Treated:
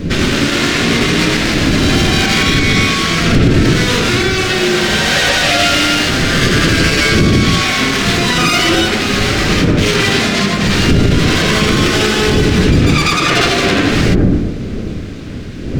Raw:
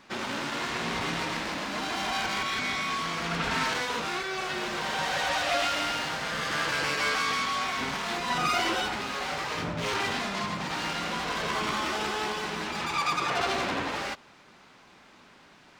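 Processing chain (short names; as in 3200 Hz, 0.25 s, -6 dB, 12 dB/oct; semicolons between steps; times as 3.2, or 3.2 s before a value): wind noise 280 Hz -32 dBFS; bell 890 Hz -15 dB 1 oct; on a send at -2.5 dB: Gaussian blur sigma 5.1 samples + reverb RT60 0.65 s, pre-delay 68 ms; on the sum: maximiser +21 dB; gain -1 dB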